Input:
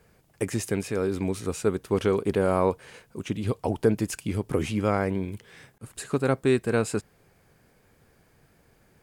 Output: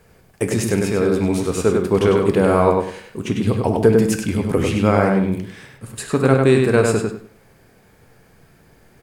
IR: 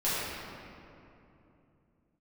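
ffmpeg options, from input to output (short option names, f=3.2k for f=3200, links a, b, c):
-filter_complex "[0:a]asplit=2[a][b];[b]adelay=99,lowpass=f=4.4k:p=1,volume=-3dB,asplit=2[c][d];[d]adelay=99,lowpass=f=4.4k:p=1,volume=0.26,asplit=2[e][f];[f]adelay=99,lowpass=f=4.4k:p=1,volume=0.26,asplit=2[g][h];[h]adelay=99,lowpass=f=4.4k:p=1,volume=0.26[i];[a][c][e][g][i]amix=inputs=5:normalize=0,asplit=2[j][k];[1:a]atrim=start_sample=2205,atrim=end_sample=3528[l];[k][l]afir=irnorm=-1:irlink=0,volume=-12dB[m];[j][m]amix=inputs=2:normalize=0,volume=5dB"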